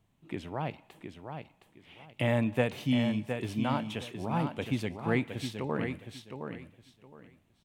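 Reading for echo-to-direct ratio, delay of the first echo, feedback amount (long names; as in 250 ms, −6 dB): −7.0 dB, 715 ms, 22%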